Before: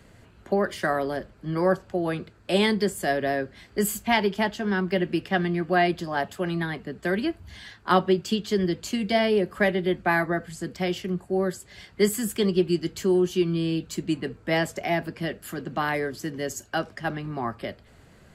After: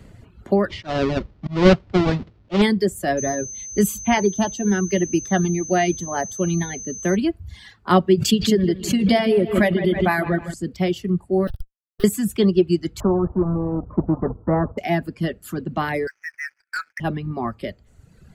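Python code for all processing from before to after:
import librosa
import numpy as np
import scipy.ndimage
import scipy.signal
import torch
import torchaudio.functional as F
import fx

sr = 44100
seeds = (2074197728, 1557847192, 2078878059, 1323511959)

y = fx.chain(x, sr, fx.halfwave_hold(),
    fx.lowpass(hz=5000.0, slope=24),
    fx.auto_swell(attack_ms=196.0), at=(0.7, 2.62))
y = fx.filter_lfo_notch(y, sr, shape='saw_down', hz=1.0, low_hz=630.0, high_hz=5100.0, q=2.9, at=(3.17, 7.15), fade=0.02)
y = fx.dmg_tone(y, sr, hz=6200.0, level_db=-28.0, at=(3.17, 7.15), fade=0.02)
y = fx.chain(y, sr, fx.high_shelf(hz=5000.0, db=5.5),
    fx.echo_bbd(ms=157, stages=4096, feedback_pct=57, wet_db=-8.0),
    fx.pre_swell(db_per_s=50.0), at=(8.17, 10.54))
y = fx.chain(y, sr, fx.peak_eq(hz=210.0, db=-9.0, octaves=2.0),
    fx.schmitt(flips_db=-31.5),
    fx.fixed_phaser(hz=1500.0, stages=8), at=(11.47, 12.04))
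y = fx.chain(y, sr, fx.law_mismatch(coded='A'),
    fx.steep_lowpass(hz=1200.0, slope=48),
    fx.spectral_comp(ratio=2.0), at=(13.0, 14.78))
y = fx.chain(y, sr, fx.brickwall_bandpass(low_hz=1300.0, high_hz=2600.0),
    fx.leveller(passes=3), at=(16.07, 17.0))
y = fx.notch(y, sr, hz=1600.0, q=20.0)
y = fx.dereverb_blind(y, sr, rt60_s=1.3)
y = fx.low_shelf(y, sr, hz=350.0, db=9.5)
y = y * 10.0 ** (1.5 / 20.0)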